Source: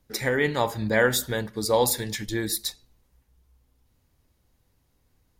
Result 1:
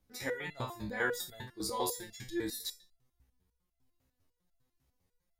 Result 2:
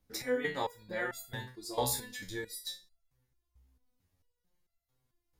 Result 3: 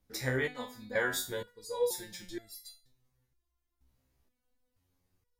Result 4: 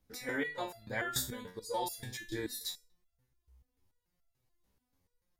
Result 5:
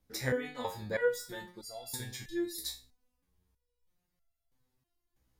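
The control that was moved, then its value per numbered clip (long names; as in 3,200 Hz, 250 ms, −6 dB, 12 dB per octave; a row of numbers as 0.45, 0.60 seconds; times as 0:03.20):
step-sequenced resonator, speed: 10, 4.5, 2.1, 6.9, 3.1 Hertz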